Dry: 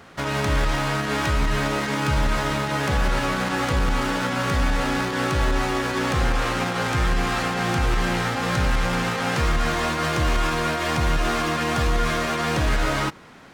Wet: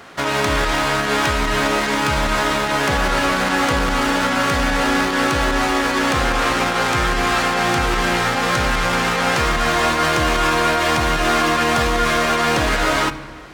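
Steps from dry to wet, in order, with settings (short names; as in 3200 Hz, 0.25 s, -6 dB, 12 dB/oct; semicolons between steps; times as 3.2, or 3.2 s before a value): low shelf 190 Hz -10.5 dB; on a send: reverb RT60 1.7 s, pre-delay 3 ms, DRR 12.5 dB; on the sum: gain +7 dB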